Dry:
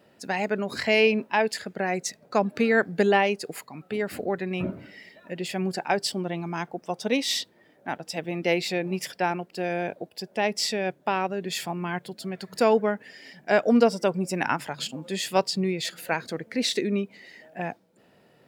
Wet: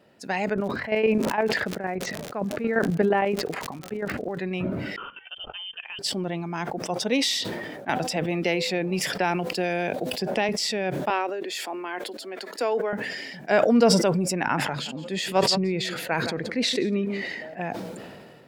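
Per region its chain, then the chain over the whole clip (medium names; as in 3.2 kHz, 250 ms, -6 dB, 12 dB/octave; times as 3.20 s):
0.53–4.37 s: low-pass 1.8 kHz + square tremolo 8.7 Hz, depth 65%, duty 25% + crackle 130 per s -46 dBFS
4.96–5.99 s: level held to a coarse grid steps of 17 dB + frequency inversion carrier 3.3 kHz + upward expansion 2.5:1, over -48 dBFS
7.89–10.49 s: de-hum 253.1 Hz, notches 5 + three bands compressed up and down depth 100%
11.10–12.93 s: steep high-pass 260 Hz 48 dB/octave + compression 1.5:1, threshold -29 dBFS
14.33–17.58 s: treble shelf 4.7 kHz -9 dB + delay 170 ms -19 dB
whole clip: treble shelf 9.8 kHz -5.5 dB; decay stretcher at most 29 dB/s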